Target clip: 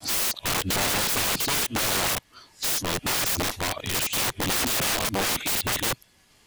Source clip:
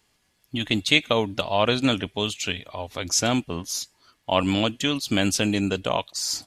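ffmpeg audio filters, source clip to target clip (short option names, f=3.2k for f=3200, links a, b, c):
-af "areverse,apsyclip=14.5dB,aeval=exprs='(mod(5.01*val(0)+1,2)-1)/5.01':c=same,volume=-6dB"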